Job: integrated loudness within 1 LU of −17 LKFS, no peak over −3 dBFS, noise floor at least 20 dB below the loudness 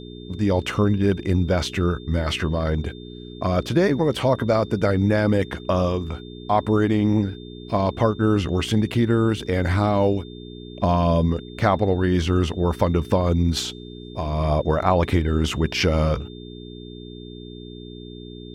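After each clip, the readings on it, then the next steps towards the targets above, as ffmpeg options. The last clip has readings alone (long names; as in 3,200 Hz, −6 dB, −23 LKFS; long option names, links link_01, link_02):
mains hum 60 Hz; hum harmonics up to 420 Hz; level of the hum −36 dBFS; interfering tone 3,600 Hz; level of the tone −46 dBFS; integrated loudness −22.0 LKFS; sample peak −4.0 dBFS; target loudness −17.0 LKFS
→ -af "bandreject=frequency=60:width_type=h:width=4,bandreject=frequency=120:width_type=h:width=4,bandreject=frequency=180:width_type=h:width=4,bandreject=frequency=240:width_type=h:width=4,bandreject=frequency=300:width_type=h:width=4,bandreject=frequency=360:width_type=h:width=4,bandreject=frequency=420:width_type=h:width=4"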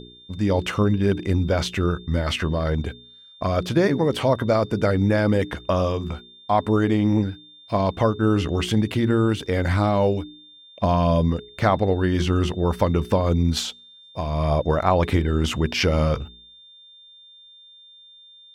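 mains hum none found; interfering tone 3,600 Hz; level of the tone −46 dBFS
→ -af "bandreject=frequency=3600:width=30"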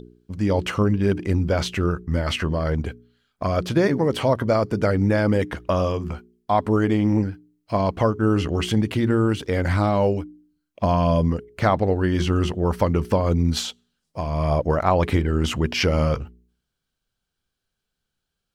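interfering tone none found; integrated loudness −22.0 LKFS; sample peak −4.0 dBFS; target loudness −17.0 LKFS
→ -af "volume=5dB,alimiter=limit=-3dB:level=0:latency=1"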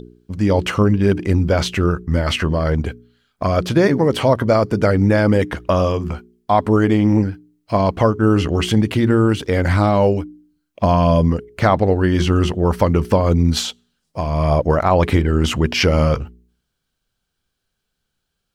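integrated loudness −17.0 LKFS; sample peak −3.0 dBFS; background noise floor −76 dBFS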